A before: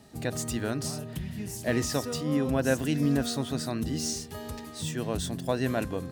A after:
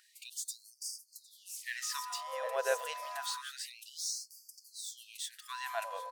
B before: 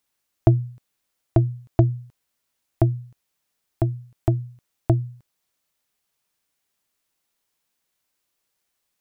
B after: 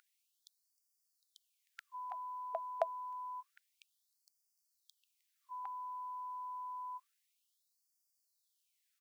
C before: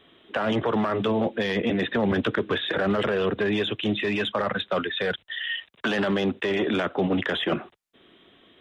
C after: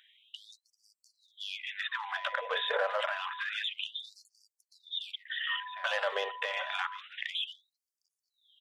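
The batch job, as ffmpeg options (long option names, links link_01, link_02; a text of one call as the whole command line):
ffmpeg -i in.wav -filter_complex "[0:a]asplit=2[link_01][link_02];[link_02]adelay=758,volume=-8dB,highshelf=frequency=4000:gain=-17.1[link_03];[link_01][link_03]amix=inputs=2:normalize=0,aeval=exprs='val(0)+0.0141*sin(2*PI*1000*n/s)':channel_layout=same,afftfilt=real='re*gte(b*sr/1024,420*pow(4600/420,0.5+0.5*sin(2*PI*0.28*pts/sr)))':imag='im*gte(b*sr/1024,420*pow(4600/420,0.5+0.5*sin(2*PI*0.28*pts/sr)))':win_size=1024:overlap=0.75,volume=-4dB" out.wav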